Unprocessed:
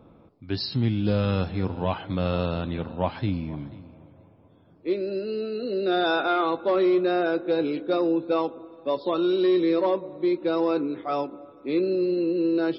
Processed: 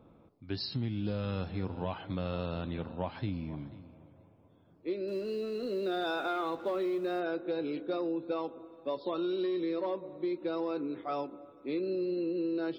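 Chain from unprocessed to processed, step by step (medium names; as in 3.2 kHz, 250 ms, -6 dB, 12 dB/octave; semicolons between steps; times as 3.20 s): 5.08–7.20 s: companding laws mixed up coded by mu; compression, threshold -23 dBFS, peak gain reduction 6 dB; trim -6.5 dB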